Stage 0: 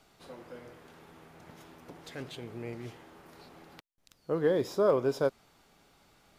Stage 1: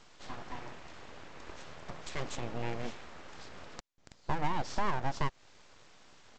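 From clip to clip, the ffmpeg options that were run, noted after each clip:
-af "aresample=16000,aeval=exprs='abs(val(0))':c=same,aresample=44100,acompressor=threshold=0.02:ratio=4,volume=2.24"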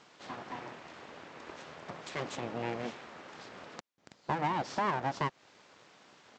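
-af "highpass=160,highshelf=f=5100:g=-8,volume=1.41"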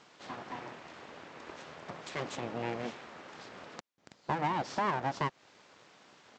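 -af anull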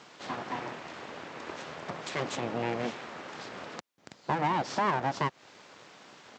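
-filter_complex "[0:a]highpass=71,asplit=2[s0][s1];[s1]alimiter=level_in=1.88:limit=0.0631:level=0:latency=1:release=188,volume=0.531,volume=1.12[s2];[s0][s2]amix=inputs=2:normalize=0"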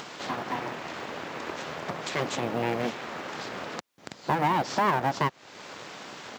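-filter_complex "[0:a]asplit=2[s0][s1];[s1]acompressor=mode=upward:threshold=0.0251:ratio=2.5,volume=1.41[s2];[s0][s2]amix=inputs=2:normalize=0,acrusher=bits=8:mode=log:mix=0:aa=0.000001,volume=0.631"

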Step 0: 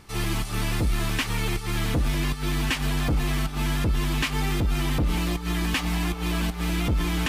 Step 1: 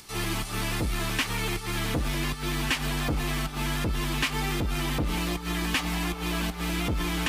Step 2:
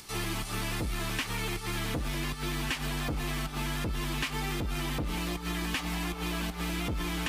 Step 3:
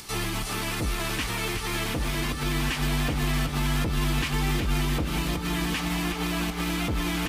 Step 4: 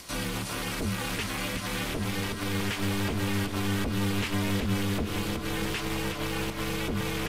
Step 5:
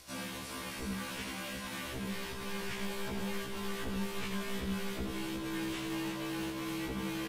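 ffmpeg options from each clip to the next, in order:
-filter_complex "[0:a]acrossover=split=120|3200[s0][s1][s2];[s2]acompressor=mode=upward:threshold=0.00708:ratio=2.5[s3];[s0][s1][s3]amix=inputs=3:normalize=0,lowshelf=f=190:g=-6.5"
-af "acompressor=threshold=0.0282:ratio=2.5"
-filter_complex "[0:a]alimiter=level_in=1.19:limit=0.0631:level=0:latency=1,volume=0.841,asplit=2[s0][s1];[s1]aecho=0:1:367|734|1101|1468|1835|2202:0.422|0.219|0.114|0.0593|0.0308|0.016[s2];[s0][s2]amix=inputs=2:normalize=0,volume=2"
-af "aeval=exprs='val(0)*sin(2*PI*150*n/s)':c=same"
-af "aecho=1:1:83:0.596,afftfilt=real='re*1.73*eq(mod(b,3),0)':imag='im*1.73*eq(mod(b,3),0)':win_size=2048:overlap=0.75,volume=0.447"

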